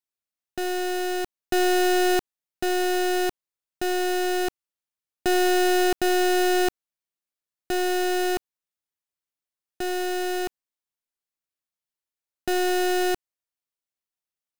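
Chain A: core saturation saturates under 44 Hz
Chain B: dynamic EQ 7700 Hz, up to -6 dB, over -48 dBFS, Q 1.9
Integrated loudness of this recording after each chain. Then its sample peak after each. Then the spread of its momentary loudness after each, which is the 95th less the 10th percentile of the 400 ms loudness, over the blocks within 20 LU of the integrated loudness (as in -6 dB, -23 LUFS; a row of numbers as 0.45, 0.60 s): -34.0, -24.5 LUFS; -20.0, -18.5 dBFS; 7, 11 LU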